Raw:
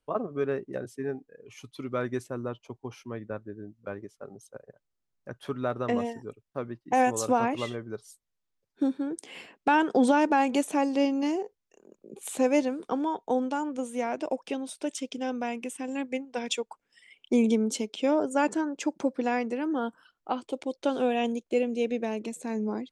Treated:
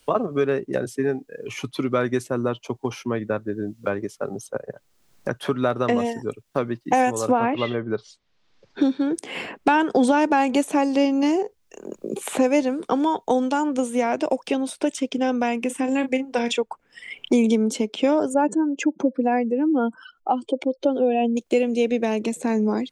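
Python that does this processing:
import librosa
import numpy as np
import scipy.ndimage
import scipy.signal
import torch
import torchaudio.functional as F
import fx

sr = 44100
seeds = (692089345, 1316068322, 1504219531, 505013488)

y = fx.lowpass(x, sr, hz=fx.line((7.31, 3400.0), (9.13, 6000.0)), slope=24, at=(7.31, 9.13), fade=0.02)
y = fx.doubler(y, sr, ms=34.0, db=-11.0, at=(15.69, 16.56), fade=0.02)
y = fx.spec_expand(y, sr, power=1.8, at=(18.34, 21.37))
y = fx.band_squash(y, sr, depth_pct=70)
y = F.gain(torch.from_numpy(y), 7.0).numpy()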